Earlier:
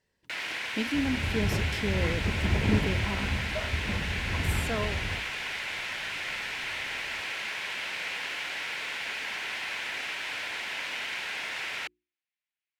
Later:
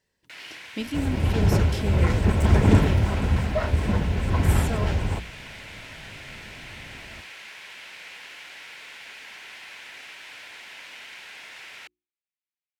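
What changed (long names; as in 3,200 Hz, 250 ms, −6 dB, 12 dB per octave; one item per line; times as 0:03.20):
first sound −9.0 dB
second sound +9.5 dB
master: add high-shelf EQ 4,700 Hz +5 dB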